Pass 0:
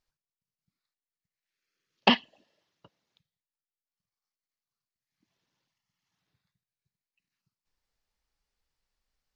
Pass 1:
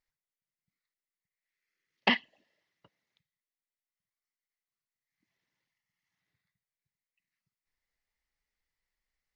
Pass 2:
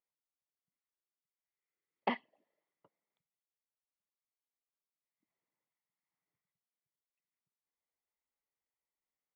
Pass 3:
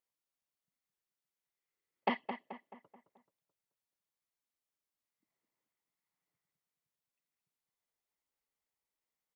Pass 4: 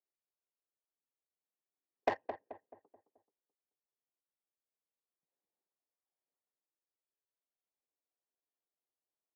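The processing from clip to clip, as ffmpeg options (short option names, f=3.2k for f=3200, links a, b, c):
-af "equalizer=f=2k:t=o:w=0.35:g=13,volume=-6.5dB"
-af "bandpass=f=540:t=q:w=1.3:csg=0,aecho=1:1:0.9:0.31"
-filter_complex "[0:a]asplit=2[a][b];[b]adelay=216,lowpass=f=2.7k:p=1,volume=-8dB,asplit=2[c][d];[d]adelay=216,lowpass=f=2.7k:p=1,volume=0.46,asplit=2[e][f];[f]adelay=216,lowpass=f=2.7k:p=1,volume=0.46,asplit=2[g][h];[h]adelay=216,lowpass=f=2.7k:p=1,volume=0.46,asplit=2[i][j];[j]adelay=216,lowpass=f=2.7k:p=1,volume=0.46[k];[a][c][e][g][i][k]amix=inputs=6:normalize=0,volume=1dB"
-af "highpass=f=490:t=q:w=0.5412,highpass=f=490:t=q:w=1.307,lowpass=f=2.9k:t=q:w=0.5176,lowpass=f=2.9k:t=q:w=0.7071,lowpass=f=2.9k:t=q:w=1.932,afreqshift=-140,adynamicsmooth=sensitivity=2.5:basefreq=730,volume=2.5dB"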